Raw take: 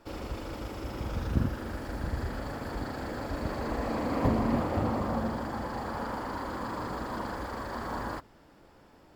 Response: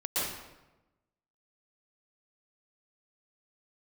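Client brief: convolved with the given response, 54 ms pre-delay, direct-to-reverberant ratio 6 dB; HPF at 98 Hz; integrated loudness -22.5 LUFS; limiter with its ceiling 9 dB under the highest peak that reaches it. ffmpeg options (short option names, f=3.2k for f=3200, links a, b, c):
-filter_complex "[0:a]highpass=98,alimiter=level_in=0.5dB:limit=-24dB:level=0:latency=1,volume=-0.5dB,asplit=2[a][b];[1:a]atrim=start_sample=2205,adelay=54[c];[b][c]afir=irnorm=-1:irlink=0,volume=-14dB[d];[a][d]amix=inputs=2:normalize=0,volume=12.5dB"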